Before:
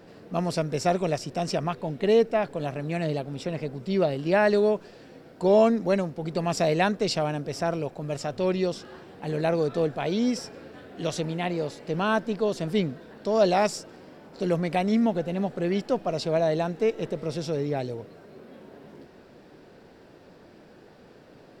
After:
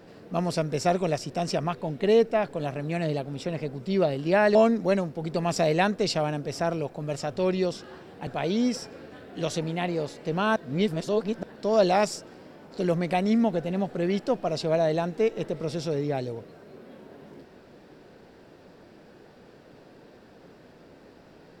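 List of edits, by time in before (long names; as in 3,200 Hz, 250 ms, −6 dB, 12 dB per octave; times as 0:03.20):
0:04.55–0:05.56: remove
0:09.28–0:09.89: remove
0:12.18–0:13.05: reverse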